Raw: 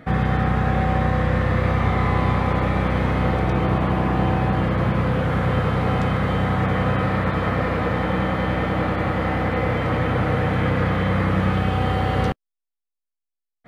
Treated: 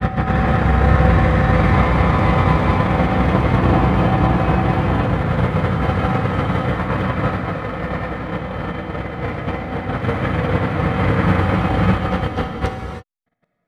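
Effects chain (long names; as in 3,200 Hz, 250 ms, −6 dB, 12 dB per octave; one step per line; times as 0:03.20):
noise gate −19 dBFS, range −17 dB
granular cloud, spray 521 ms, pitch spread up and down by 0 semitones
reverb whose tail is shaped and stops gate 350 ms flat, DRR 2 dB
level +6 dB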